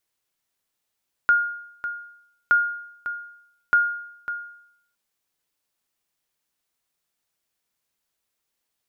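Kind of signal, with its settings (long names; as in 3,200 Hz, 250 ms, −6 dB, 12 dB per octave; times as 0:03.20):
ping with an echo 1,420 Hz, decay 0.73 s, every 1.22 s, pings 3, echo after 0.55 s, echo −12 dB −11 dBFS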